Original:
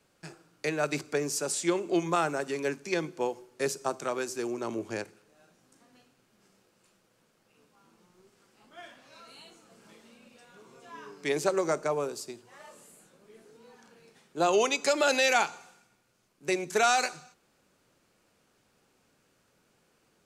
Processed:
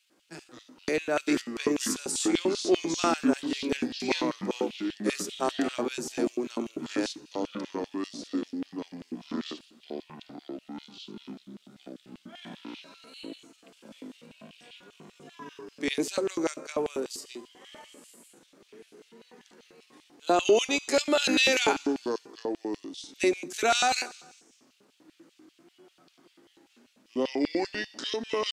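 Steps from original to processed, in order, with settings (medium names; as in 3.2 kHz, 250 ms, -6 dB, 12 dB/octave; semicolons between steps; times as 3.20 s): tempo 0.71×; ever faster or slower copies 105 ms, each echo -5 st, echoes 3, each echo -6 dB; LFO high-pass square 5.1 Hz 270–3000 Hz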